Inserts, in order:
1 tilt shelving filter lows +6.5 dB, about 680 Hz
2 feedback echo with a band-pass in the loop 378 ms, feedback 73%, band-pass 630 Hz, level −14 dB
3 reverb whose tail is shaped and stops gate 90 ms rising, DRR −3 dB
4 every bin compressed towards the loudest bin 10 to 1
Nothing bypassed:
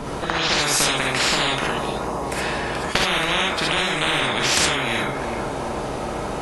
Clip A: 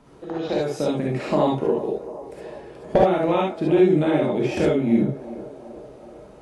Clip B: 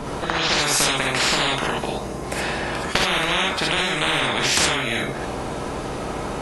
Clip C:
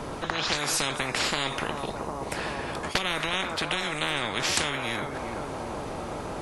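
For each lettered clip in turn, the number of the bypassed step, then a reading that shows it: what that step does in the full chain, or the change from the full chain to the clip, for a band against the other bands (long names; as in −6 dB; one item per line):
4, 4 kHz band −21.0 dB
2, change in momentary loudness spread +2 LU
3, change in integrated loudness −7.5 LU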